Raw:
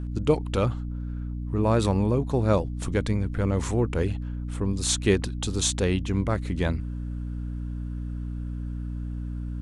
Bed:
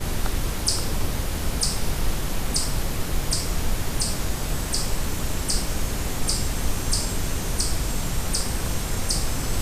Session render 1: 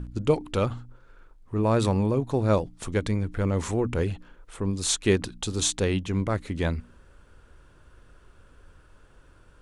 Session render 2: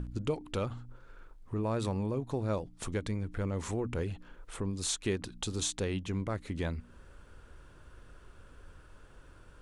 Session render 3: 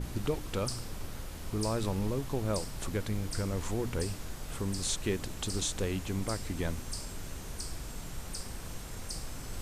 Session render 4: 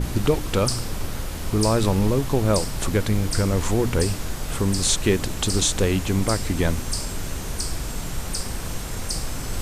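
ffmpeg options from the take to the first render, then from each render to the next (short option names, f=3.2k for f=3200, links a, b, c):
-af "bandreject=f=60:t=h:w=4,bandreject=f=120:t=h:w=4,bandreject=f=180:t=h:w=4,bandreject=f=240:t=h:w=4,bandreject=f=300:t=h:w=4"
-af "acompressor=threshold=-37dB:ratio=2"
-filter_complex "[1:a]volume=-15.5dB[a];[0:a][a]amix=inputs=2:normalize=0"
-af "volume=12dB"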